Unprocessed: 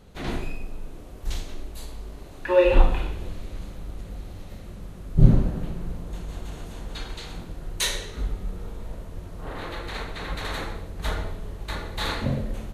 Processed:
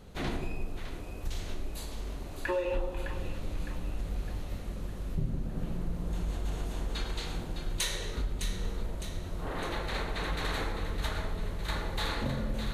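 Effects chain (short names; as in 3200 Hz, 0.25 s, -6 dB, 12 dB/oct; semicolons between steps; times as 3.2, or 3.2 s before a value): compressor 8:1, threshold -29 dBFS, peak gain reduction 22 dB; on a send: split-band echo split 970 Hz, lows 0.166 s, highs 0.609 s, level -8 dB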